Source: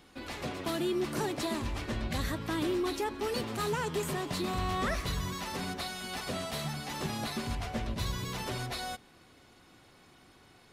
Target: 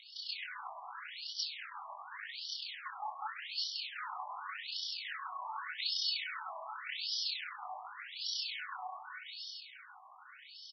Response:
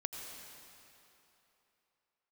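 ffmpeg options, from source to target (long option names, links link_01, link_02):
-af "aeval=exprs='clip(val(0),-1,0.0119)':channel_layout=same,dynaudnorm=framelen=330:gausssize=11:maxgain=6dB,equalizer=frequency=370:width_type=o:width=2.3:gain=-7.5,acompressor=threshold=-47dB:ratio=3,tremolo=f=30:d=0.857,aecho=1:1:220|396|536.8|649.4|739.6:0.631|0.398|0.251|0.158|0.1,flanger=delay=18.5:depth=5:speed=1.4,superequalizer=8b=0.447:14b=2.51,afftfilt=real='re*between(b*sr/1024,840*pow(4200/840,0.5+0.5*sin(2*PI*0.86*pts/sr))/1.41,840*pow(4200/840,0.5+0.5*sin(2*PI*0.86*pts/sr))*1.41)':imag='im*between(b*sr/1024,840*pow(4200/840,0.5+0.5*sin(2*PI*0.86*pts/sr))/1.41,840*pow(4200/840,0.5+0.5*sin(2*PI*0.86*pts/sr))*1.41)':win_size=1024:overlap=0.75,volume=16.5dB"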